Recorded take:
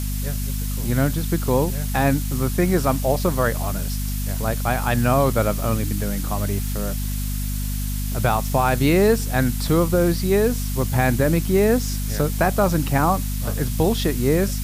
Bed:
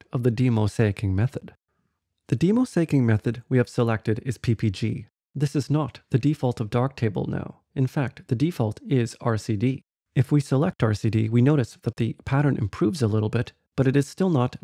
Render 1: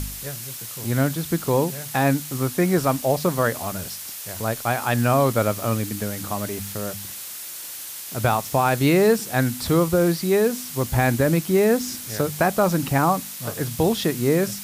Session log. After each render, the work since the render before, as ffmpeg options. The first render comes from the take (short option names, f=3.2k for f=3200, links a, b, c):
-af "bandreject=f=50:t=h:w=4,bandreject=f=100:t=h:w=4,bandreject=f=150:t=h:w=4,bandreject=f=200:t=h:w=4,bandreject=f=250:t=h:w=4"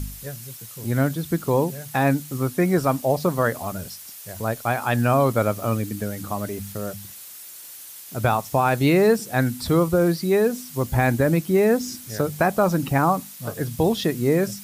-af "afftdn=nr=8:nf=-35"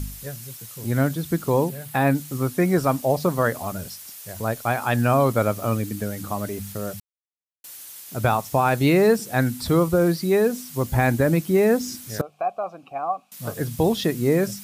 -filter_complex "[0:a]asettb=1/sr,asplit=3[a][b][c];[a]atrim=end=1.694[d];[b]atrim=start=1.69:end=2.15,asetpts=PTS-STARTPTS,afade=t=in:d=0.004:c=qsin,afade=t=out:st=0.456:d=0.004:c=qsin,equalizer=f=6.1k:t=o:w=0.57:g=-7.5[e];[c]atrim=start=2.146[f];[d][e]acrossfade=d=0.004:c1=hsin:c2=qsin[g];[g][f]acrossfade=d=0.004:c1=qsin:c2=hsin,asettb=1/sr,asplit=3[h][i][j];[h]atrim=end=12.214[k];[i]atrim=start=12.21:end=13.32,asetpts=PTS-STARTPTS,afade=t=in:d=0.004:c=qsin,afade=t=out:st=1.106:d=0.004:c=qsin,asplit=3[l][m][n];[l]bandpass=f=730:t=q:w=8,volume=0dB[o];[m]bandpass=f=1.09k:t=q:w=8,volume=-6dB[p];[n]bandpass=f=2.44k:t=q:w=8,volume=-9dB[q];[o][p][q]amix=inputs=3:normalize=0[r];[j]atrim=start=13.316[s];[k][r]acrossfade=d=0.004:c1=hsin:c2=qsin[t];[t][s]acrossfade=d=0.004:c1=qsin:c2=hsin,asplit=3[u][v][w];[u]atrim=end=7,asetpts=PTS-STARTPTS,afade=t=out:st=6.996:d=0.004:c=hsin[x];[v]atrim=start=7:end=7.64,asetpts=PTS-STARTPTS,volume=0[y];[w]atrim=start=7.64,asetpts=PTS-STARTPTS,afade=t=in:d=0.004:c=hsin[z];[x][y][z]concat=n=3:v=0:a=1"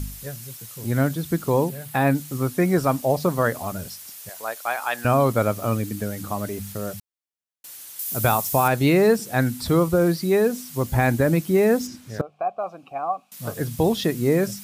-filter_complex "[0:a]asettb=1/sr,asplit=3[a][b][c];[a]atrim=end=4.294[d];[b]atrim=start=4.29:end=5.05,asetpts=PTS-STARTPTS,afade=t=in:d=0.004:c=qsin,afade=t=out:st=0.756:d=0.004:c=qsin,highpass=690[e];[c]atrim=start=5.046[f];[d][e]acrossfade=d=0.004:c1=hsin:c2=qsin[g];[g][f]acrossfade=d=0.004:c1=qsin:c2=hsin,asettb=1/sr,asplit=3[h][i][j];[h]atrim=end=7.994[k];[i]atrim=start=7.99:end=8.68,asetpts=PTS-STARTPTS,afade=t=in:d=0.004:c=qsin,afade=t=out:st=0.686:d=0.004:c=qsin,aemphasis=mode=production:type=50kf[l];[j]atrim=start=8.676[m];[k][l]acrossfade=d=0.004:c1=hsin:c2=qsin[n];[n][m]acrossfade=d=0.004:c1=qsin:c2=hsin,asplit=3[o][p][q];[o]afade=t=out:st=11.86:d=0.02[r];[p]aemphasis=mode=reproduction:type=75kf,afade=t=in:st=11.86:d=0.02,afade=t=out:st=12.58:d=0.02[s];[q]afade=t=in:st=12.58:d=0.02[t];[r][s][t]amix=inputs=3:normalize=0"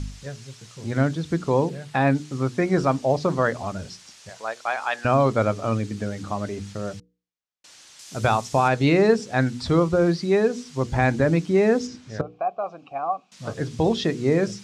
-af "lowpass=f=6.6k:w=0.5412,lowpass=f=6.6k:w=1.3066,bandreject=f=60:t=h:w=6,bandreject=f=120:t=h:w=6,bandreject=f=180:t=h:w=6,bandreject=f=240:t=h:w=6,bandreject=f=300:t=h:w=6,bandreject=f=360:t=h:w=6,bandreject=f=420:t=h:w=6,bandreject=f=480:t=h:w=6"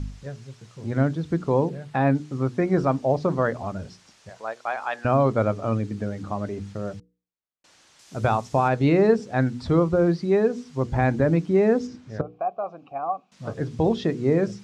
-af "highshelf=f=2.1k:g=-11"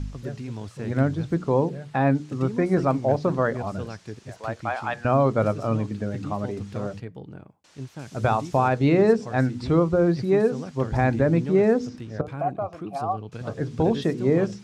-filter_complex "[1:a]volume=-13.5dB[a];[0:a][a]amix=inputs=2:normalize=0"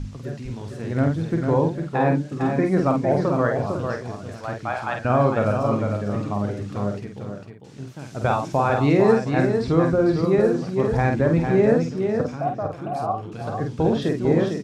-filter_complex "[0:a]asplit=2[a][b];[b]adelay=49,volume=-5dB[c];[a][c]amix=inputs=2:normalize=0,aecho=1:1:452:0.501"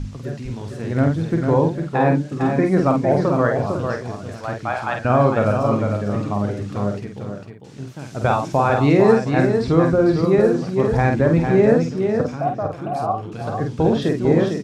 -af "volume=3dB"